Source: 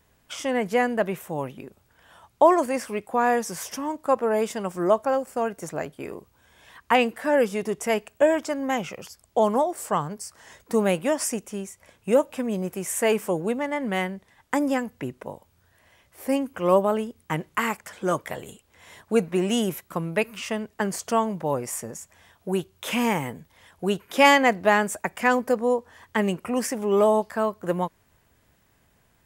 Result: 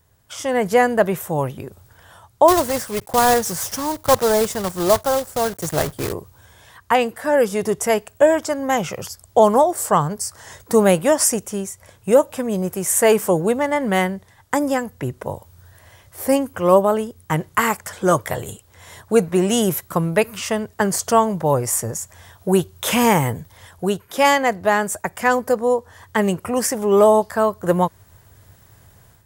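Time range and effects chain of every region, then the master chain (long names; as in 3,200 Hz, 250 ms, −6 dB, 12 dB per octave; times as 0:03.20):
0:02.48–0:06.14: one scale factor per block 3 bits + low-shelf EQ 130 Hz +5.5 dB
whole clip: high-shelf EQ 6,600 Hz +4.5 dB; automatic gain control gain up to 11 dB; graphic EQ with 15 bands 100 Hz +11 dB, 250 Hz −5 dB, 2,500 Hz −6 dB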